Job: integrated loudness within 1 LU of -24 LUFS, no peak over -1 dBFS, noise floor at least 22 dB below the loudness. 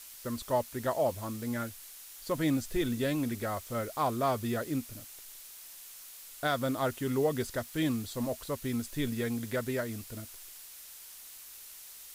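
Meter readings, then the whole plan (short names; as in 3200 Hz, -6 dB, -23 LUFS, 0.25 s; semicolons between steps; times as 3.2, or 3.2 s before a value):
noise floor -49 dBFS; noise floor target -55 dBFS; loudness -33.0 LUFS; peak -17.0 dBFS; loudness target -24.0 LUFS
-> noise print and reduce 6 dB; gain +9 dB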